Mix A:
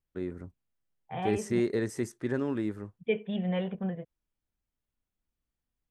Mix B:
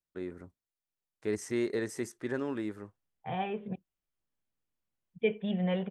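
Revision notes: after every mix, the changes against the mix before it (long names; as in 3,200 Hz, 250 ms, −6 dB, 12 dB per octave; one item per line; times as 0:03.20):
first voice: add low-shelf EQ 240 Hz −10 dB
second voice: entry +2.15 s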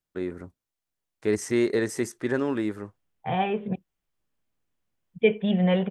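first voice +8.0 dB
second voice +8.5 dB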